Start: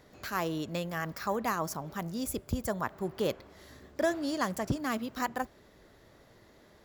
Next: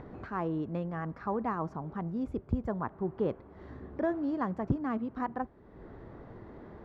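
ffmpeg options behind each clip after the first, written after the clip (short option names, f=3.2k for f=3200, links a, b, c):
-af "equalizer=f=590:t=o:w=0.42:g=-7,acompressor=mode=upward:threshold=-37dB:ratio=2.5,lowpass=1k,volume=2dB"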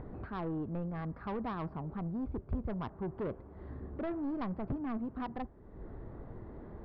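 -af "highshelf=f=2.4k:g=-11.5,aresample=11025,asoftclip=type=tanh:threshold=-31.5dB,aresample=44100,lowshelf=f=66:g=12,volume=-1dB"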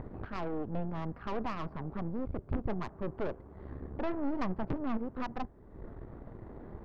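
-af "aeval=exprs='0.0596*(cos(1*acos(clip(val(0)/0.0596,-1,1)))-cos(1*PI/2))+0.0237*(cos(6*acos(clip(val(0)/0.0596,-1,1)))-cos(6*PI/2))+0.00841*(cos(8*acos(clip(val(0)/0.0596,-1,1)))-cos(8*PI/2))':c=same"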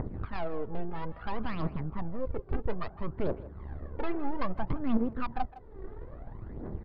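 -filter_complex "[0:a]aphaser=in_gain=1:out_gain=1:delay=2.7:decay=0.65:speed=0.6:type=triangular,aresample=11025,aresample=44100,asplit=2[a][b];[b]adelay=160,highpass=300,lowpass=3.4k,asoftclip=type=hard:threshold=-24dB,volume=-16dB[c];[a][c]amix=inputs=2:normalize=0"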